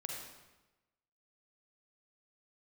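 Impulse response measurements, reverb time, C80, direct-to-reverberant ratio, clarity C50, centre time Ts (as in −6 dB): 1.1 s, 3.0 dB, −0.5 dB, 0.5 dB, 63 ms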